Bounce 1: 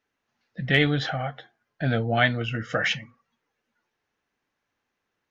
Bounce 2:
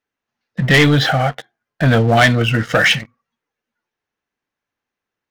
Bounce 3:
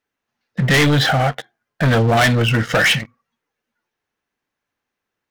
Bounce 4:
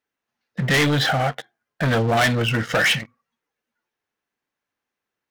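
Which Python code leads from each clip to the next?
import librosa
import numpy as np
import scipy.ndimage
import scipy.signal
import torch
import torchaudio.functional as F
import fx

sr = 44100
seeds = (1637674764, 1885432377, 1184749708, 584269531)

y1 = fx.leveller(x, sr, passes=3)
y1 = y1 * librosa.db_to_amplitude(2.0)
y2 = 10.0 ** (-13.0 / 20.0) * np.tanh(y1 / 10.0 ** (-13.0 / 20.0))
y2 = y2 * librosa.db_to_amplitude(2.5)
y3 = fx.low_shelf(y2, sr, hz=110.0, db=-6.0)
y3 = y3 * librosa.db_to_amplitude(-3.5)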